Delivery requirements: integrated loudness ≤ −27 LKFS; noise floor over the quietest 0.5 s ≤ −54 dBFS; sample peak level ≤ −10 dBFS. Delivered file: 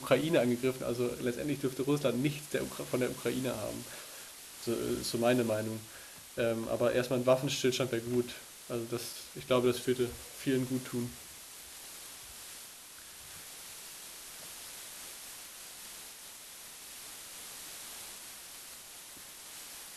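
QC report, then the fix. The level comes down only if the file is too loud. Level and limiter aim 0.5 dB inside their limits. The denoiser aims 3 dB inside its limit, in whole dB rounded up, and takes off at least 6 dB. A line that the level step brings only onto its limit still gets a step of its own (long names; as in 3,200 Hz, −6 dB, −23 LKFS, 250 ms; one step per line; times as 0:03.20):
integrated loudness −35.0 LKFS: in spec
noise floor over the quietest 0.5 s −51 dBFS: out of spec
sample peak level −13.0 dBFS: in spec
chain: broadband denoise 6 dB, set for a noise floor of −51 dBFS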